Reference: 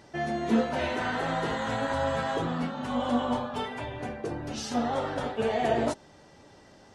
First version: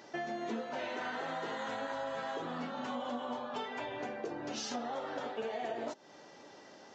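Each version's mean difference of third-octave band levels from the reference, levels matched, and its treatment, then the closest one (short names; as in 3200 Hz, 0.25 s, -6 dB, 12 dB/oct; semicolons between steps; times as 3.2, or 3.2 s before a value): 4.5 dB: HPF 270 Hz 12 dB/oct; compressor 6:1, threshold -37 dBFS, peak gain reduction 15 dB; downsampling 16000 Hz; gain +1 dB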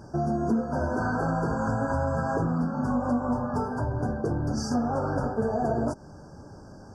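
8.0 dB: tone controls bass +9 dB, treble -4 dB; compressor 6:1, threshold -28 dBFS, peak gain reduction 12.5 dB; brick-wall FIR band-stop 1700–4500 Hz; gain +5 dB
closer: first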